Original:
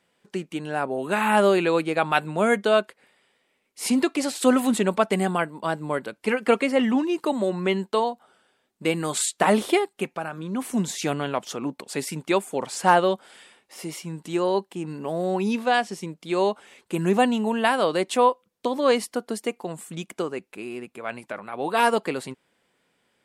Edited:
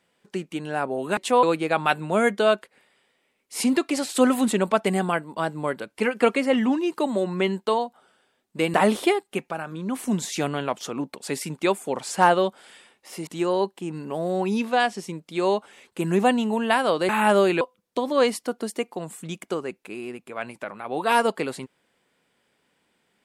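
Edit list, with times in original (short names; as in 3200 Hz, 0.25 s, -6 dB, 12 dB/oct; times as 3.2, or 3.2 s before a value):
1.17–1.69 swap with 18.03–18.29
9–9.4 cut
13.93–14.21 cut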